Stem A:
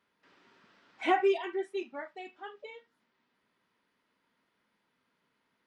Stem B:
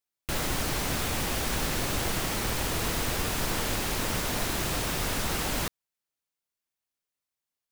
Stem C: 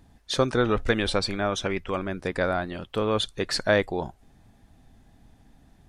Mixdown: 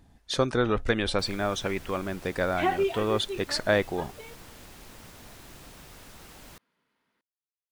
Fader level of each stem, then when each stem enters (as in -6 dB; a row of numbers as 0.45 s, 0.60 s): 0.0 dB, -19.0 dB, -2.0 dB; 1.55 s, 0.90 s, 0.00 s